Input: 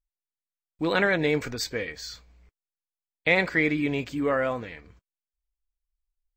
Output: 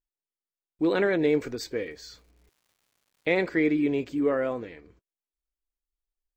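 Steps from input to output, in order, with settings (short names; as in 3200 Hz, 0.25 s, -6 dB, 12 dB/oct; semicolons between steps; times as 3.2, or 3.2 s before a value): bell 360 Hz +12 dB 1.2 oct; 1.29–3.42 crackle 310/s -49 dBFS; gain -7 dB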